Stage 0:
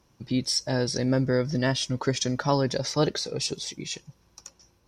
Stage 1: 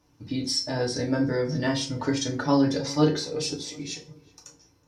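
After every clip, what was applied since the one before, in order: resonator 93 Hz, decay 0.21 s, harmonics all; darkening echo 0.373 s, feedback 37%, low-pass 2000 Hz, level -20 dB; FDN reverb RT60 0.36 s, low-frequency decay 1.25×, high-frequency decay 0.7×, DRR -1 dB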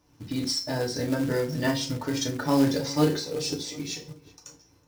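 in parallel at -2.5 dB: compressor 8:1, threshold -35 dBFS, peak gain reduction 19 dB; on the sum: short-mantissa float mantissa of 2-bit; noise-modulated level, depth 55%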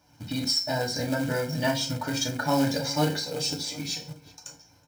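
HPF 170 Hz 6 dB/oct; comb 1.3 ms, depth 69%; in parallel at -3 dB: compressor, threshold -33 dBFS, peak gain reduction 13 dB; on the sum: gain -1.5 dB

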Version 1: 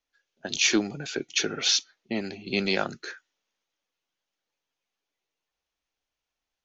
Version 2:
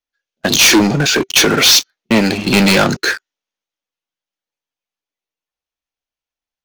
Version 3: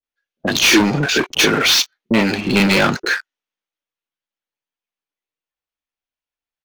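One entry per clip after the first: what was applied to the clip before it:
sample leveller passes 5; notch 390 Hz, Q 12; gain +5 dB
tone controls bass -3 dB, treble -7 dB; bands offset in time lows, highs 30 ms, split 630 Hz; gain -1 dB

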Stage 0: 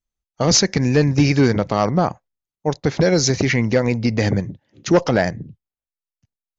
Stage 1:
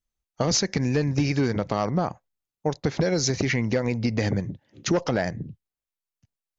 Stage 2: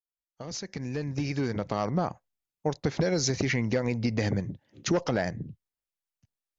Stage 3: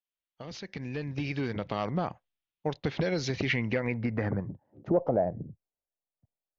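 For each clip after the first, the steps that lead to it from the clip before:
compressor 3:1, threshold -22 dBFS, peak gain reduction 9.5 dB
opening faded in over 2.01 s; gain -3 dB
low-pass sweep 3200 Hz -> 660 Hz, 3.54–4.87; gain -3 dB

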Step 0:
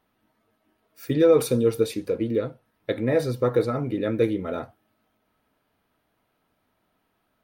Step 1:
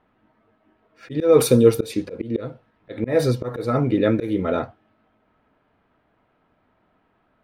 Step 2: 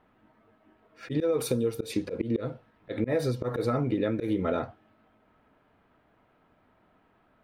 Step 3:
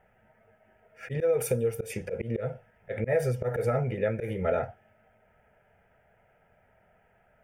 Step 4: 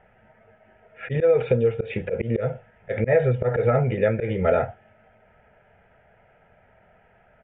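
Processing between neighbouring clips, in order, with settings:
low-pass opened by the level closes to 2200 Hz, open at -18 dBFS; auto swell 0.201 s; gain +7.5 dB
compressor 20:1, threshold -23 dBFS, peak gain reduction 16 dB
fixed phaser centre 1100 Hz, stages 6; gain +4 dB
downsampling 8000 Hz; gain +7 dB

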